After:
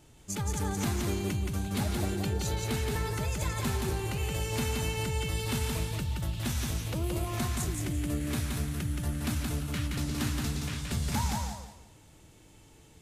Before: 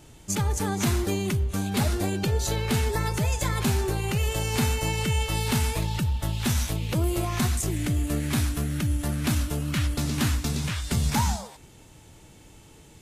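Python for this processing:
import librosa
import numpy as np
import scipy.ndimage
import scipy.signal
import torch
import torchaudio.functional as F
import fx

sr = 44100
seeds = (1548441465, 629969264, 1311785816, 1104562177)

y = fx.echo_feedback(x, sr, ms=173, feedback_pct=27, wet_db=-3.0)
y = y * librosa.db_to_amplitude(-7.5)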